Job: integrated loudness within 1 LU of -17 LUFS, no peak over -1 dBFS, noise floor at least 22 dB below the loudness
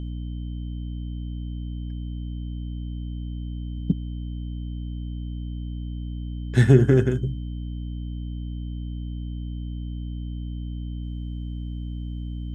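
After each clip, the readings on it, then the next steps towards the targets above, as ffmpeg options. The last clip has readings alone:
hum 60 Hz; harmonics up to 300 Hz; hum level -28 dBFS; steady tone 3100 Hz; tone level -55 dBFS; loudness -28.5 LUFS; peak -3.5 dBFS; loudness target -17.0 LUFS
-> -af "bandreject=f=60:t=h:w=4,bandreject=f=120:t=h:w=4,bandreject=f=180:t=h:w=4,bandreject=f=240:t=h:w=4,bandreject=f=300:t=h:w=4"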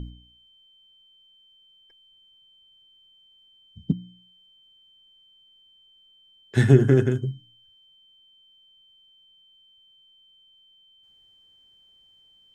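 hum none; steady tone 3100 Hz; tone level -55 dBFS
-> -af "bandreject=f=3.1k:w=30"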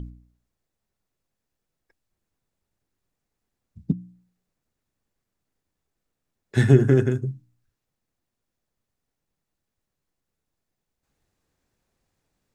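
steady tone none; loudness -21.0 LUFS; peak -4.0 dBFS; loudness target -17.0 LUFS
-> -af "volume=4dB,alimiter=limit=-1dB:level=0:latency=1"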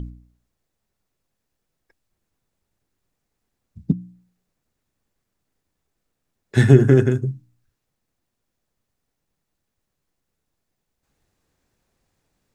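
loudness -17.5 LUFS; peak -1.0 dBFS; noise floor -79 dBFS

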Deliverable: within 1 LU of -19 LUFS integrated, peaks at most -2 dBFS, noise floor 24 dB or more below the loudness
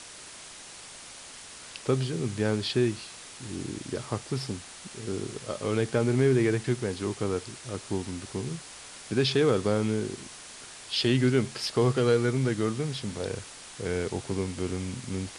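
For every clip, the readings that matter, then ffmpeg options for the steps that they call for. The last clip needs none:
noise floor -46 dBFS; noise floor target -53 dBFS; loudness -29.0 LUFS; peak -12.0 dBFS; loudness target -19.0 LUFS
-> -af "afftdn=nr=7:nf=-46"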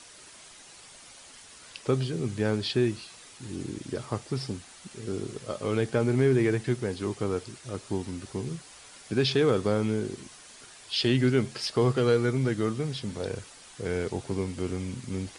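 noise floor -50 dBFS; noise floor target -53 dBFS
-> -af "afftdn=nr=6:nf=-50"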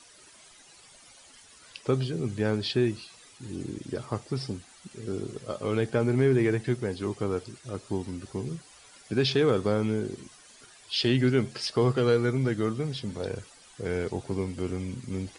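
noise floor -54 dBFS; loudness -29.0 LUFS; peak -12.5 dBFS; loudness target -19.0 LUFS
-> -af "volume=10dB"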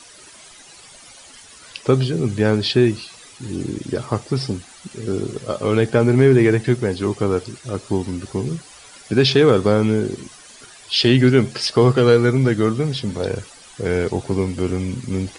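loudness -19.0 LUFS; peak -2.5 dBFS; noise floor -44 dBFS

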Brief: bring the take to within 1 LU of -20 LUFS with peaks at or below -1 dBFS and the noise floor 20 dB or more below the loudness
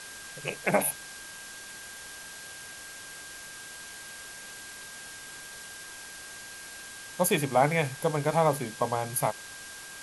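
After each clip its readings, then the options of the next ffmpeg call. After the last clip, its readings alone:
steady tone 1600 Hz; tone level -46 dBFS; noise floor -44 dBFS; noise floor target -52 dBFS; loudness -32.0 LUFS; peak -10.5 dBFS; loudness target -20.0 LUFS
-> -af "bandreject=f=1.6k:w=30"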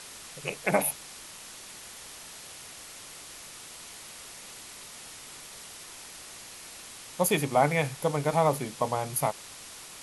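steady tone none; noise floor -46 dBFS; noise floor target -48 dBFS
-> -af "afftdn=nr=6:nf=-46"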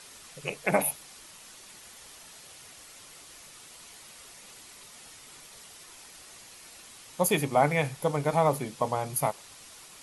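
noise floor -50 dBFS; loudness -28.0 LUFS; peak -10.5 dBFS; loudness target -20.0 LUFS
-> -af "volume=8dB"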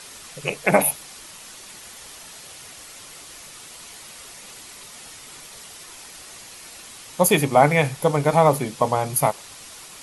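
loudness -20.0 LUFS; peak -2.5 dBFS; noise floor -42 dBFS

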